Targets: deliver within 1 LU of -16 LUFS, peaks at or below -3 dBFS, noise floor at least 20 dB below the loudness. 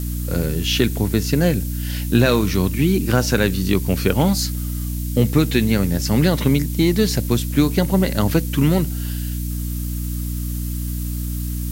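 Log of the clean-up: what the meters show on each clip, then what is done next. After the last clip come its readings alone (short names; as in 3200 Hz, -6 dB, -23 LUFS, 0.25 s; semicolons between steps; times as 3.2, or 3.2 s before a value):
hum 60 Hz; harmonics up to 300 Hz; hum level -22 dBFS; noise floor -25 dBFS; noise floor target -40 dBFS; loudness -20.0 LUFS; peak -3.0 dBFS; loudness target -16.0 LUFS
-> de-hum 60 Hz, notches 5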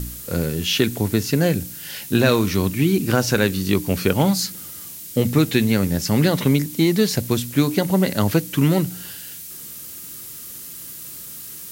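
hum none; noise floor -36 dBFS; noise floor target -40 dBFS
-> denoiser 6 dB, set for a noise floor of -36 dBFS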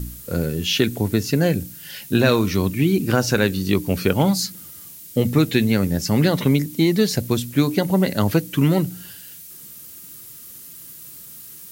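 noise floor -41 dBFS; loudness -20.0 LUFS; peak -3.5 dBFS; loudness target -16.0 LUFS
-> gain +4 dB; limiter -3 dBFS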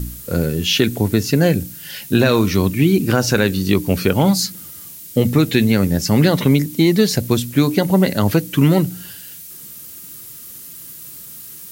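loudness -16.5 LUFS; peak -3.0 dBFS; noise floor -37 dBFS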